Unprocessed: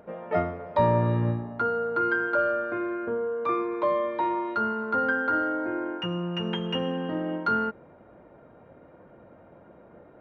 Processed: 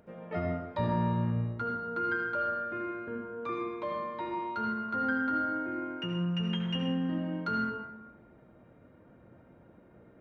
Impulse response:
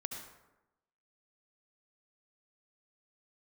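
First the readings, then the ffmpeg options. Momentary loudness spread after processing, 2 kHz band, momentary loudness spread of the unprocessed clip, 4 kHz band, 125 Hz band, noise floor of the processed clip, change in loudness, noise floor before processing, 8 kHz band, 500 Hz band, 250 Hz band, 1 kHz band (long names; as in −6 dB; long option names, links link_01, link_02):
7 LU, −6.0 dB, 6 LU, −3.5 dB, −3.0 dB, −58 dBFS, −5.5 dB, −53 dBFS, can't be measured, −10.0 dB, −2.5 dB, −6.0 dB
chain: -filter_complex "[0:a]equalizer=frequency=750:width=0.53:gain=-9.5[link_01];[1:a]atrim=start_sample=2205[link_02];[link_01][link_02]afir=irnorm=-1:irlink=0"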